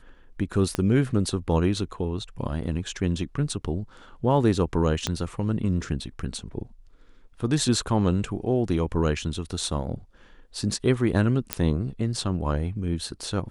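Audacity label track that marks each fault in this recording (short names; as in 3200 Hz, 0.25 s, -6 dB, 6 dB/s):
0.750000	0.750000	pop -12 dBFS
5.070000	5.070000	pop -10 dBFS
11.530000	11.530000	pop -5 dBFS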